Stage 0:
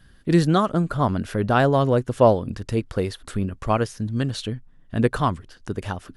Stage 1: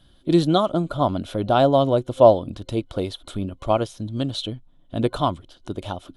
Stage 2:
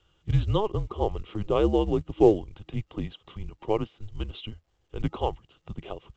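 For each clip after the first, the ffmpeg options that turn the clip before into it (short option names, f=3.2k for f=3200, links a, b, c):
-af "superequalizer=6b=2:8b=2.51:9b=1.58:11b=0.398:13b=2.82,volume=-3.5dB"
-af "highpass=f=150:t=q:w=0.5412,highpass=f=150:t=q:w=1.307,lowpass=f=3.3k:t=q:w=0.5176,lowpass=f=3.3k:t=q:w=0.7071,lowpass=f=3.3k:t=q:w=1.932,afreqshift=-210,volume=-5.5dB" -ar 16000 -c:a pcm_mulaw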